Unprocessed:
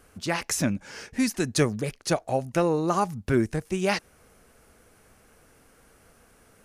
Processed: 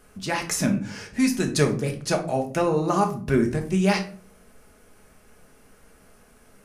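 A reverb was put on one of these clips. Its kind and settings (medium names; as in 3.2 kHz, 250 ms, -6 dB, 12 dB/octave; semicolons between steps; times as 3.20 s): simulated room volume 380 m³, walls furnished, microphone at 1.4 m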